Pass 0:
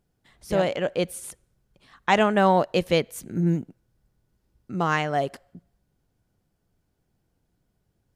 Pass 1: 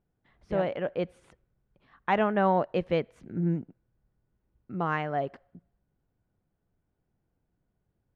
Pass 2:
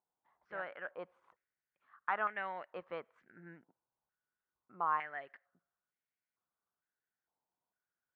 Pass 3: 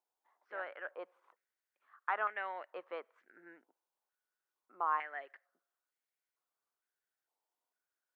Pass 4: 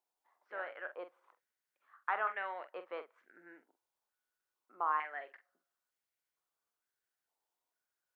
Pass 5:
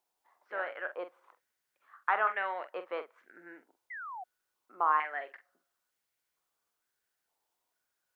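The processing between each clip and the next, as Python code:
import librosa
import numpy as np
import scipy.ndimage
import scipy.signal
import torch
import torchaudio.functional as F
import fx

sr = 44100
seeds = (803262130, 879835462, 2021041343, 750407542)

y1 = scipy.signal.sosfilt(scipy.signal.butter(2, 2100.0, 'lowpass', fs=sr, output='sos'), x)
y1 = y1 * librosa.db_to_amplitude(-5.0)
y2 = fx.filter_held_bandpass(y1, sr, hz=2.2, low_hz=940.0, high_hz=2100.0)
y2 = y2 * librosa.db_to_amplitude(1.5)
y3 = scipy.signal.sosfilt(scipy.signal.butter(4, 320.0, 'highpass', fs=sr, output='sos'), y2)
y4 = fx.doubler(y3, sr, ms=45.0, db=-10.0)
y5 = fx.spec_paint(y4, sr, seeds[0], shape='fall', start_s=3.9, length_s=0.34, low_hz=700.0, high_hz=2100.0, level_db=-48.0)
y5 = y5 * librosa.db_to_amplitude(6.0)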